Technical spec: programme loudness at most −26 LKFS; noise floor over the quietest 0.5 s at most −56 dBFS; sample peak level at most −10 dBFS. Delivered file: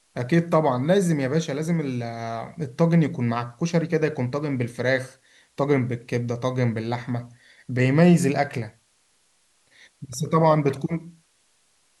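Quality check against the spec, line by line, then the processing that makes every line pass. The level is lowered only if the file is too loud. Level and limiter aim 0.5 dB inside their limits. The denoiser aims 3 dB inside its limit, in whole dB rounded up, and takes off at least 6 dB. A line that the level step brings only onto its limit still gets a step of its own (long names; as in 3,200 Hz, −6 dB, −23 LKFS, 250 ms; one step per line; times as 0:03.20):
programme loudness −23.5 LKFS: out of spec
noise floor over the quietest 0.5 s −64 dBFS: in spec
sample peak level −4.5 dBFS: out of spec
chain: level −3 dB
brickwall limiter −10.5 dBFS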